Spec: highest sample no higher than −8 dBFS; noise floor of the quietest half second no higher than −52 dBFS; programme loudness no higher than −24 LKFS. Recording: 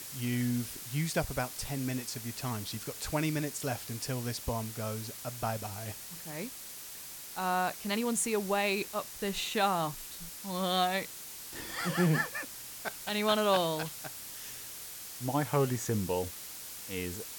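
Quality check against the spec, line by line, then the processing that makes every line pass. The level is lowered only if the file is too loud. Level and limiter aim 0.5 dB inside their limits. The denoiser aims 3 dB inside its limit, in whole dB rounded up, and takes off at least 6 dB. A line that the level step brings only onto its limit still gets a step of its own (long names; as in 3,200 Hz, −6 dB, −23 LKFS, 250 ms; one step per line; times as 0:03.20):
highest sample −15.0 dBFS: in spec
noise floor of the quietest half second −45 dBFS: out of spec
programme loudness −33.5 LKFS: in spec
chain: broadband denoise 10 dB, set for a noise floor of −45 dBFS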